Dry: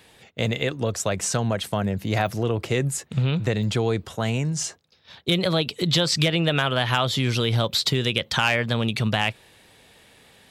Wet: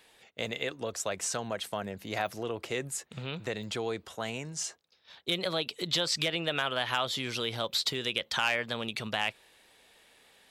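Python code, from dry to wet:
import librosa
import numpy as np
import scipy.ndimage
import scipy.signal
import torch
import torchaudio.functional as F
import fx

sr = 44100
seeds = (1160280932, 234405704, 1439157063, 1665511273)

y = fx.peak_eq(x, sr, hz=110.0, db=-13.5, octaves=2.2)
y = F.gain(torch.from_numpy(y), -6.5).numpy()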